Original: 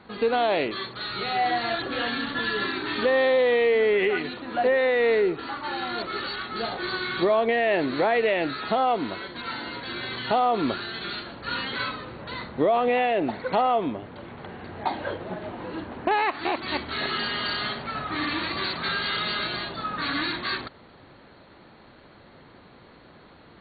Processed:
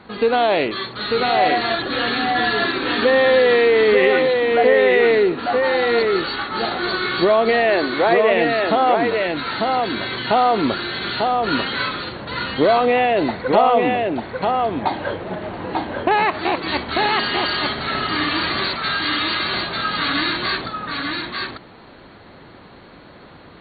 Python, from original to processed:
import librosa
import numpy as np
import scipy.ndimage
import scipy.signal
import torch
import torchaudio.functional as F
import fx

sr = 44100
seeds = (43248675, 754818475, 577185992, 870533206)

y = fx.bandpass_edges(x, sr, low_hz=300.0, high_hz=2700.0, at=(7.7, 8.31))
y = fx.low_shelf(y, sr, hz=490.0, db=-12.0, at=(18.75, 19.51))
y = y + 10.0 ** (-3.5 / 20.0) * np.pad(y, (int(894 * sr / 1000.0), 0))[:len(y)]
y = y * 10.0 ** (6.0 / 20.0)